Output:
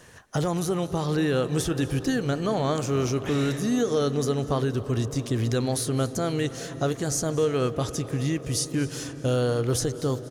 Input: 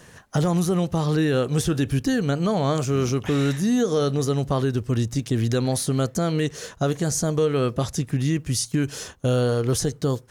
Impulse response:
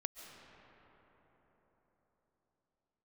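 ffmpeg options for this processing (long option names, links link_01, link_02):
-filter_complex "[0:a]equalizer=frequency=180:width=2.3:gain=-5.5,aecho=1:1:241|482|723|964:0.0794|0.0469|0.0277|0.0163,asplit=2[link_01][link_02];[1:a]atrim=start_sample=2205,asetrate=29106,aresample=44100[link_03];[link_02][link_03]afir=irnorm=-1:irlink=0,volume=-5dB[link_04];[link_01][link_04]amix=inputs=2:normalize=0,volume=-5.5dB"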